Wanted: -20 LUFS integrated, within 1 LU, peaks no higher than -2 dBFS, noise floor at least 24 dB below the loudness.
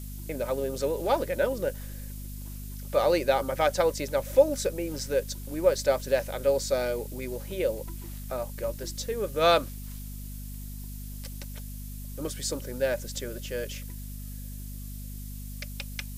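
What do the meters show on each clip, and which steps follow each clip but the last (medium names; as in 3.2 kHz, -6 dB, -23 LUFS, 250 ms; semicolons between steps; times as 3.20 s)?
hum 50 Hz; highest harmonic 250 Hz; hum level -36 dBFS; noise floor -39 dBFS; noise floor target -53 dBFS; loudness -28.5 LUFS; peak level -8.0 dBFS; loudness target -20.0 LUFS
-> hum notches 50/100/150/200/250 Hz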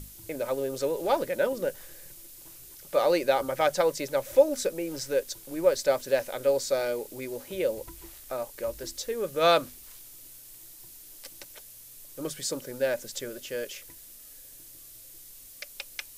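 hum not found; noise floor -49 dBFS; noise floor target -53 dBFS
-> noise print and reduce 6 dB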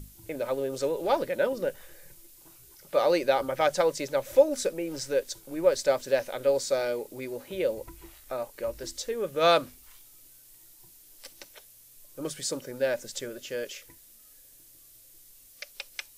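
noise floor -55 dBFS; loudness -28.5 LUFS; peak level -8.5 dBFS; loudness target -20.0 LUFS
-> trim +8.5 dB; peak limiter -2 dBFS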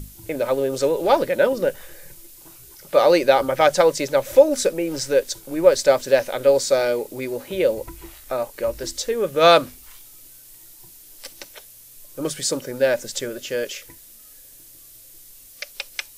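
loudness -20.0 LUFS; peak level -2.0 dBFS; noise floor -46 dBFS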